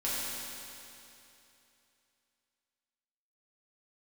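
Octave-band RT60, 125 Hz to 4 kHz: 2.9 s, 2.9 s, 2.9 s, 2.9 s, 2.9 s, 2.8 s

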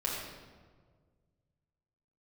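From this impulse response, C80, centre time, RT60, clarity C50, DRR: 2.5 dB, 75 ms, 1.7 s, 0.5 dB, -4.5 dB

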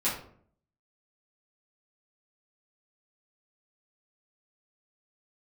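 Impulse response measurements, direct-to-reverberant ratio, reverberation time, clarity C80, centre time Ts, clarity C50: -10.5 dB, 0.55 s, 9.5 dB, 35 ms, 5.5 dB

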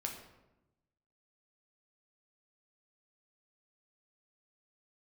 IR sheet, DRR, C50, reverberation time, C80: 1.0 dB, 6.0 dB, 1.0 s, 8.5 dB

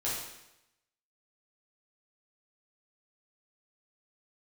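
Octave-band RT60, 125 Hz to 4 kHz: 0.90 s, 0.90 s, 0.90 s, 0.90 s, 0.90 s, 0.85 s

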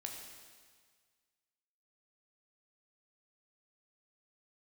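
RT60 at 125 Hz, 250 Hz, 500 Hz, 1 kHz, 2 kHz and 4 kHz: 1.8 s, 1.6 s, 1.7 s, 1.7 s, 1.7 s, 1.7 s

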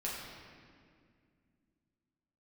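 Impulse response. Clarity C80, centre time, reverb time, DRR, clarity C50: 2.0 dB, 100 ms, 2.1 s, -6.5 dB, 0.0 dB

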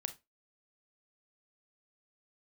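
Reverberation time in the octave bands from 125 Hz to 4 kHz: 0.25 s, 0.25 s, 0.25 s, 0.20 s, 0.20 s, 0.20 s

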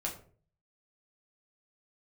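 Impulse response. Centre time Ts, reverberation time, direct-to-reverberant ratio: 20 ms, 0.45 s, -2.5 dB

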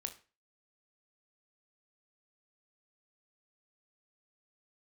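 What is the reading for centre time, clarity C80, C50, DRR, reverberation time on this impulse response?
8 ms, 19.0 dB, 13.5 dB, 6.0 dB, 0.35 s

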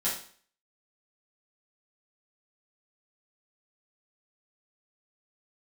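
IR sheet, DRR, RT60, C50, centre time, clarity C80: -9.0 dB, 0.50 s, 5.0 dB, 35 ms, 10.0 dB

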